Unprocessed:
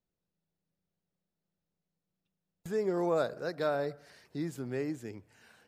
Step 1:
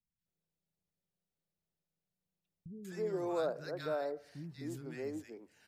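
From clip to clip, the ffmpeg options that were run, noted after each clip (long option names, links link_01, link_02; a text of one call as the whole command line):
ffmpeg -i in.wav -filter_complex "[0:a]acrossover=split=240|1300[link_01][link_02][link_03];[link_03]adelay=190[link_04];[link_02]adelay=260[link_05];[link_01][link_05][link_04]amix=inputs=3:normalize=0,volume=-4dB" out.wav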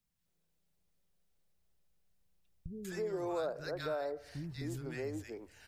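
ffmpeg -i in.wav -af "asubboost=boost=11.5:cutoff=60,acompressor=threshold=-47dB:ratio=2,volume=7.5dB" out.wav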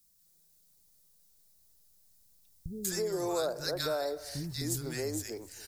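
ffmpeg -i in.wav -af "aexciter=amount=4.9:drive=4.9:freq=4000,aecho=1:1:277:0.0944,volume=4dB" out.wav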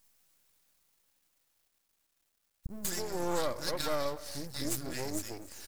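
ffmpeg -i in.wav -af "aecho=1:1:3.6:0.44,aeval=exprs='max(val(0),0)':channel_layout=same,volume=2.5dB" out.wav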